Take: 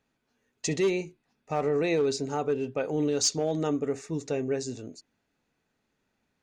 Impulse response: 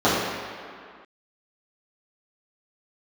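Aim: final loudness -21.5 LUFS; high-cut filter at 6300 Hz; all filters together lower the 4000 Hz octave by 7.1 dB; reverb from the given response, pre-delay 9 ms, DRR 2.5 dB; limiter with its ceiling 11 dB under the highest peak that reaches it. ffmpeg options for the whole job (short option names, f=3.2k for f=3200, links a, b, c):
-filter_complex "[0:a]lowpass=6.3k,equalizer=f=4k:t=o:g=-8,alimiter=level_in=5dB:limit=-24dB:level=0:latency=1,volume=-5dB,asplit=2[a][b];[1:a]atrim=start_sample=2205,adelay=9[c];[b][c]afir=irnorm=-1:irlink=0,volume=-25dB[d];[a][d]amix=inputs=2:normalize=0,volume=12.5dB"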